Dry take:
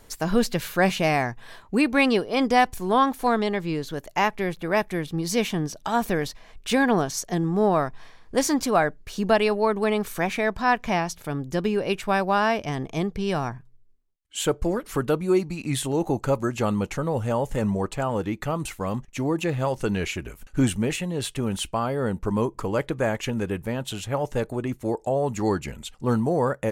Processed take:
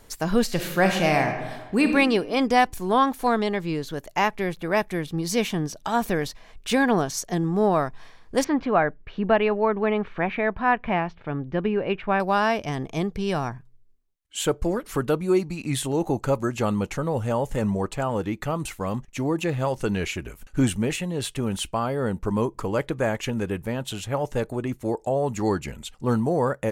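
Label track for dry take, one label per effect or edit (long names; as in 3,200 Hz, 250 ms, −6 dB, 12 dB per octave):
0.430000	1.930000	thrown reverb, RT60 1.3 s, DRR 4.5 dB
8.440000	12.200000	low-pass filter 2,800 Hz 24 dB per octave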